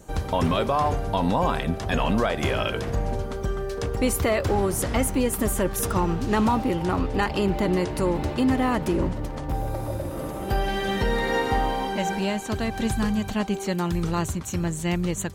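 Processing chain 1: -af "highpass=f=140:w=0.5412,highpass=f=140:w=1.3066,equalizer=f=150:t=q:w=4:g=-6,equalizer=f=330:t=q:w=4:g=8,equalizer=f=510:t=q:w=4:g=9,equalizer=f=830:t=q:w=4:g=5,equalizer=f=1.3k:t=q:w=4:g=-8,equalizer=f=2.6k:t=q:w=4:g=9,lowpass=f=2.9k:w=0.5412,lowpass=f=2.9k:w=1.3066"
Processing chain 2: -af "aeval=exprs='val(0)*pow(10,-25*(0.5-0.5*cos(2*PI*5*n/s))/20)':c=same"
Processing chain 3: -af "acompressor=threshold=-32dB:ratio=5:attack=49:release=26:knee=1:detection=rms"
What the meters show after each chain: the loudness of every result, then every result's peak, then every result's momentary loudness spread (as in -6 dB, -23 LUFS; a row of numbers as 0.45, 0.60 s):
-22.0, -31.0, -30.5 LUFS; -6.5, -13.0, -15.5 dBFS; 8, 7, 3 LU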